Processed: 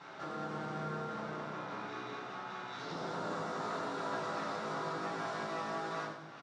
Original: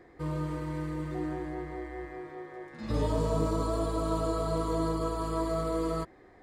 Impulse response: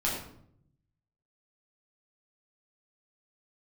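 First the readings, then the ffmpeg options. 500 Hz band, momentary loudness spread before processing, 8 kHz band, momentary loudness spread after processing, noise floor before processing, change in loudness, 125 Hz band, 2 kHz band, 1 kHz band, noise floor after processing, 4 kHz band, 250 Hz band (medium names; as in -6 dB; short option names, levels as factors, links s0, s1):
-8.5 dB, 13 LU, -7.0 dB, 5 LU, -56 dBFS, -7.0 dB, -13.5 dB, +5.0 dB, -2.0 dB, -49 dBFS, -0.5 dB, -11.0 dB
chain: -filter_complex "[0:a]acompressor=threshold=0.00316:ratio=3,aeval=exprs='abs(val(0))':c=same,highpass=f=160:w=0.5412,highpass=f=160:w=1.3066,equalizer=f=240:t=q:w=4:g=-6,equalizer=f=370:t=q:w=4:g=-3,equalizer=f=1300:t=q:w=4:g=8,equalizer=f=2400:t=q:w=4:g=-3,equalizer=f=3800:t=q:w=4:g=5,equalizer=f=5800:t=q:w=4:g=6,lowpass=f=7400:w=0.5412,lowpass=f=7400:w=1.3066,aecho=1:1:98|196|294|392|490|588:0.316|0.171|0.0922|0.0498|0.0269|0.0145[s0];[1:a]atrim=start_sample=2205,asetrate=48510,aresample=44100[s1];[s0][s1]afir=irnorm=-1:irlink=0,volume=1.5"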